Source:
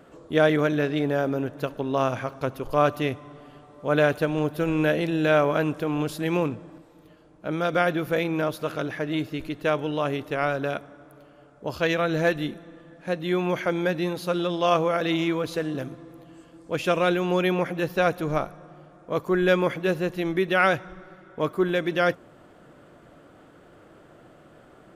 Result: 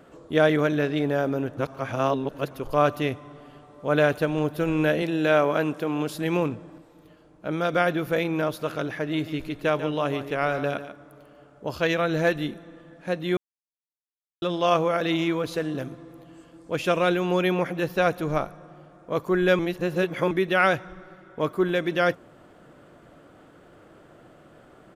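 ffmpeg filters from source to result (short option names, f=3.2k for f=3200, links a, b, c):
-filter_complex "[0:a]asettb=1/sr,asplit=3[a][b][c];[a]atrim=end=5.024[d];[b]atrim=start=5.02:end=6.15,asetpts=PTS-STARTPTS,afade=t=in:d=0.004:c=qsin,afade=t=out:st=1.126:d=0.004:c=qsin,highpass=160[e];[c]atrim=start=6.146[f];[d][e]acrossfade=d=0.004:c1=hsin:c2=qsin[g];[g][f]acrossfade=d=0.004:c1=qsin:c2=hsin,asplit=3[h][i][j];[h]afade=t=out:st=9.17:d=0.02[k];[i]aecho=1:1:144:0.266,afade=t=in:st=9.17:d=0.02,afade=t=out:st=11.72:d=0.02[l];[j]afade=t=in:st=11.72:d=0.02[m];[k][l][m]amix=inputs=3:normalize=0,asplit=7[n][o][p][q][r][s][t];[n]atrim=end=1.572[u];[o]atrim=start=1.568:end=2.512,asetpts=PTS-STARTPTS,areverse[v];[p]atrim=start=2.508:end=13.37,asetpts=PTS-STARTPTS,afade=t=out:st=10.858:d=0.004:c=hsin[w];[q]atrim=start=13.37:end=14.42,asetpts=PTS-STARTPTS,volume=0[x];[r]atrim=start=14.42:end=19.592,asetpts=PTS-STARTPTS,afade=t=in:d=0.004:c=hsin[y];[s]atrim=start=19.588:end=20.312,asetpts=PTS-STARTPTS,areverse[z];[t]atrim=start=20.308[aa];[u][v]acrossfade=d=0.004:c1=hsin:c2=hsin[ab];[w][x][y]concat=n=3:v=0:a=1[ac];[ab][ac]acrossfade=d=0.004:c1=hsin:c2=hsin[ad];[ad][z]acrossfade=d=0.004:c1=hsin:c2=hsin[ae];[ae][aa]acrossfade=d=0.004:c1=hsin:c2=hsin"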